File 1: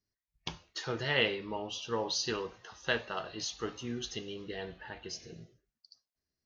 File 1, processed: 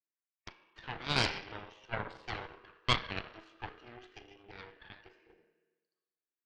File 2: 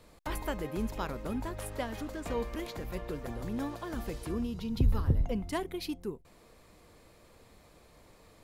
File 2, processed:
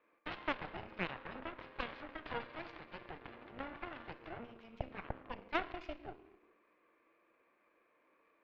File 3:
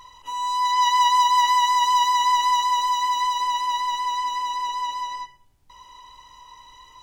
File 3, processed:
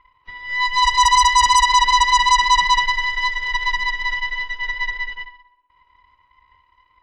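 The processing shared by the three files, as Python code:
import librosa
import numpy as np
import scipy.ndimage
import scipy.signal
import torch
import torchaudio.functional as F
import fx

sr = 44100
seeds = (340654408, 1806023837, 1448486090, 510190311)

y = fx.cabinet(x, sr, low_hz=260.0, low_slope=24, high_hz=2600.0, hz=(330.0, 540.0, 770.0, 1100.0, 1600.0, 2400.0), db=(5, 3, -3, 9, 8, 10))
y = fx.rev_schroeder(y, sr, rt60_s=1.3, comb_ms=27, drr_db=5.0)
y = fx.cheby_harmonics(y, sr, harmonics=(7, 8), levels_db=(-15, -10), full_scale_db=-2.0)
y = y * 10.0 ** (-5.0 / 20.0)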